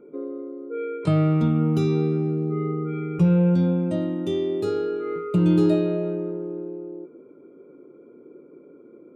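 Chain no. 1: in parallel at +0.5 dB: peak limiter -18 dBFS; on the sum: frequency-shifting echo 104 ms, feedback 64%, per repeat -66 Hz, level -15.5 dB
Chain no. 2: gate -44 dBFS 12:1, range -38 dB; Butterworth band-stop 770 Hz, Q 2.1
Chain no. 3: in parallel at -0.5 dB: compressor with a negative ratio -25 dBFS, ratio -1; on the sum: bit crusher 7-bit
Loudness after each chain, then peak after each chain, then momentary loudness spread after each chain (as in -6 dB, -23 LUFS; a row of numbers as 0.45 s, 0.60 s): -18.5 LUFS, -23.5 LUFS, -19.5 LUFS; -6.0 dBFS, -8.5 dBFS, -7.0 dBFS; 12 LU, 15 LU, 11 LU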